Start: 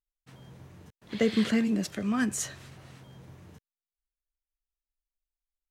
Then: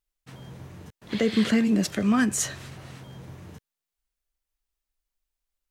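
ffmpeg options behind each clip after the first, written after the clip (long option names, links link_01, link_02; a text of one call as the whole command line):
ffmpeg -i in.wav -af "alimiter=limit=-19.5dB:level=0:latency=1:release=283,volume=7dB" out.wav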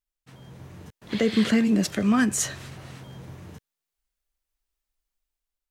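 ffmpeg -i in.wav -af "dynaudnorm=framelen=240:gausssize=5:maxgain=6dB,volume=-5dB" out.wav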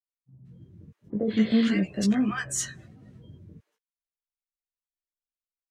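ffmpeg -i in.wav -filter_complex "[0:a]afftdn=noise_reduction=22:noise_floor=-39,flanger=delay=15:depth=4.6:speed=0.46,acrossover=split=820[link_01][link_02];[link_02]adelay=180[link_03];[link_01][link_03]amix=inputs=2:normalize=0" out.wav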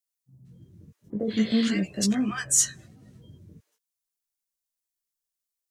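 ffmpeg -i in.wav -af "bass=frequency=250:gain=0,treble=frequency=4000:gain=12,volume=-1.5dB" out.wav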